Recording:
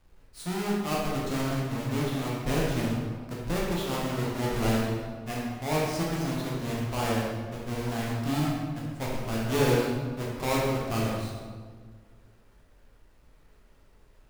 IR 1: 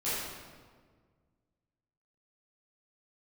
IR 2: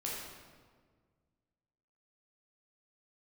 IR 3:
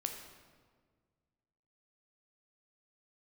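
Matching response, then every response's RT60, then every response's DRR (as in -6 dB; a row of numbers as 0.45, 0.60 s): 2; 1.6, 1.7, 1.7 s; -13.0, -5.0, 4.0 dB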